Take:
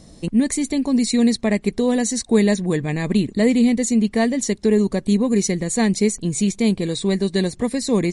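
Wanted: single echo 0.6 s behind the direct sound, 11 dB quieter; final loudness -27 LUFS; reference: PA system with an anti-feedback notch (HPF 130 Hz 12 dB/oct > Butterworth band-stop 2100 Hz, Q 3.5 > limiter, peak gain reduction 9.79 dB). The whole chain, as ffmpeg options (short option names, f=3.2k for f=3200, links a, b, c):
-af "highpass=130,asuperstop=centerf=2100:order=8:qfactor=3.5,aecho=1:1:600:0.282,volume=-3dB,alimiter=limit=-18.5dB:level=0:latency=1"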